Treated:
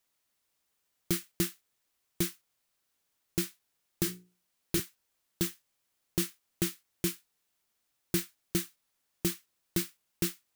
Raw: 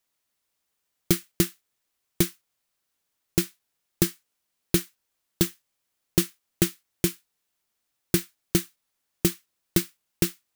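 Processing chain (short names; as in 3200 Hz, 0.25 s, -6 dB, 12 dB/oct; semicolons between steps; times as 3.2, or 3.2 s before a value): 4.03–4.8 notches 60/120/180/240/300/360/420/480 Hz; limiter -15.5 dBFS, peak gain reduction 10.5 dB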